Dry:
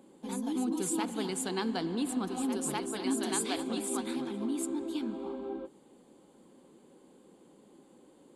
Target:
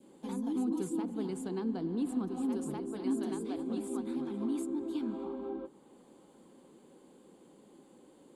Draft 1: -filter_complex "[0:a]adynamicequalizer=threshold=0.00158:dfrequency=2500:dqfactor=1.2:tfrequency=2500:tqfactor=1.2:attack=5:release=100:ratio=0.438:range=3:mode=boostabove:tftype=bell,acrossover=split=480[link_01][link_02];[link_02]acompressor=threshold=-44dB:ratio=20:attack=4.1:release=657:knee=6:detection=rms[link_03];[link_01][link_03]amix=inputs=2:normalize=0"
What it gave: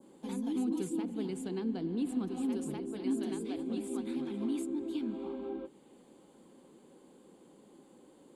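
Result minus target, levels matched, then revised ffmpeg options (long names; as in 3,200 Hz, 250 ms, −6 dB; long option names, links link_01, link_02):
1,000 Hz band −3.0 dB
-filter_complex "[0:a]adynamicequalizer=threshold=0.00158:dfrequency=1100:dqfactor=1.2:tfrequency=1100:tqfactor=1.2:attack=5:release=100:ratio=0.438:range=3:mode=boostabove:tftype=bell,acrossover=split=480[link_01][link_02];[link_02]acompressor=threshold=-44dB:ratio=20:attack=4.1:release=657:knee=6:detection=rms[link_03];[link_01][link_03]amix=inputs=2:normalize=0"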